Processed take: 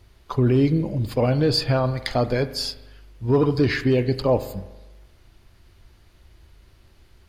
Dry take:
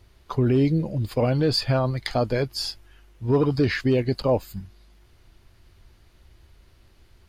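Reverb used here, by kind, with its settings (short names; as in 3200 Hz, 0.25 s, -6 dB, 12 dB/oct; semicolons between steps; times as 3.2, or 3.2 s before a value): spring tank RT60 1.1 s, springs 40 ms, chirp 30 ms, DRR 12.5 dB; gain +1.5 dB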